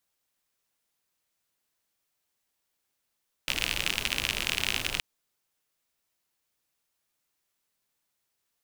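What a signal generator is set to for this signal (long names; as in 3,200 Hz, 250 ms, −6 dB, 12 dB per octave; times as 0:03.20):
rain-like ticks over hiss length 1.52 s, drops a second 59, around 2,700 Hz, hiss −7 dB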